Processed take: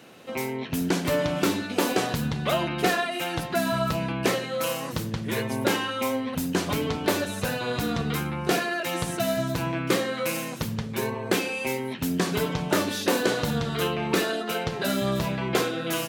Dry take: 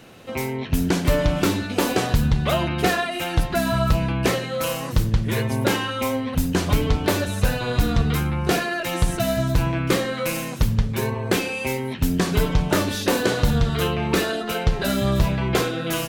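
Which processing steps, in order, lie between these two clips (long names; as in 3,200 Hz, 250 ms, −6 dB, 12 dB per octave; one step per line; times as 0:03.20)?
high-pass filter 170 Hz 12 dB per octave
level −2.5 dB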